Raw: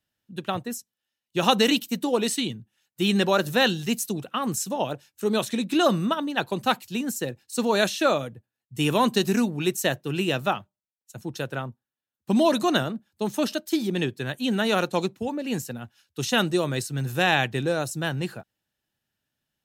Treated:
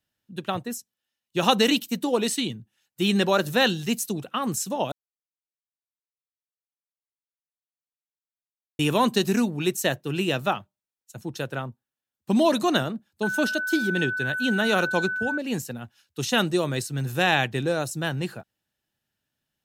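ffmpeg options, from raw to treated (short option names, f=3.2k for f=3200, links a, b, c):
-filter_complex "[0:a]asettb=1/sr,asplit=3[a][b][c];[a]atrim=end=13.234[d];[b]atrim=start=13.23:end=15.38,asetpts=PTS-STARTPTS,afade=t=in:d=0.004:c=qsin,afade=t=out:st=2.146:d=0.004:c=qsin,aeval=exprs='val(0)+0.0501*sin(2*PI*1500*n/s)':c=same[e];[c]atrim=start=15.376[f];[d][e]acrossfade=d=0.004:c1=hsin:c2=qsin[g];[g][f]acrossfade=d=0.004:c1=qsin:c2=hsin,asplit=3[h][i][j];[h]atrim=end=4.92,asetpts=PTS-STARTPTS,afade=t=out:st=4.916:d=0.004:c=hsin[k];[i]atrim=start=4.92:end=8.79,asetpts=PTS-STARTPTS,volume=0[l];[j]atrim=start=8.79,asetpts=PTS-STARTPTS,afade=t=in:d=0.004:c=hsin[m];[k][l][m]concat=n=3:v=0:a=1"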